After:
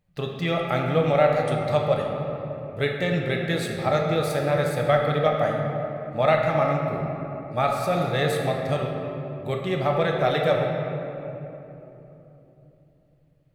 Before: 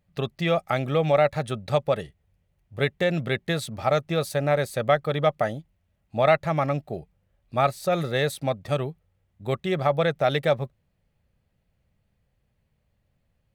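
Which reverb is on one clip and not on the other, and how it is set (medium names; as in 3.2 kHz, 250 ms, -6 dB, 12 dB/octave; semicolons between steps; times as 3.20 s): simulated room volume 170 m³, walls hard, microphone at 0.47 m; trim -2 dB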